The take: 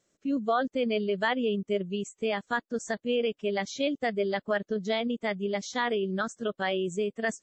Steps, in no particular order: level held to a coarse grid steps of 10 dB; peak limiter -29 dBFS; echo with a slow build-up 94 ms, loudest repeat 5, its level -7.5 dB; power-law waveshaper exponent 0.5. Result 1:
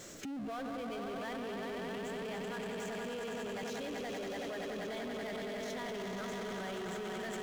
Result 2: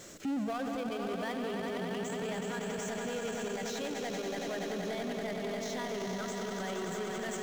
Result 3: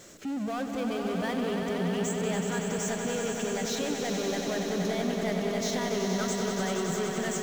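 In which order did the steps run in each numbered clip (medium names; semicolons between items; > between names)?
echo with a slow build-up > power-law waveshaper > peak limiter > level held to a coarse grid; power-law waveshaper > echo with a slow build-up > level held to a coarse grid > peak limiter; level held to a coarse grid > power-law waveshaper > peak limiter > echo with a slow build-up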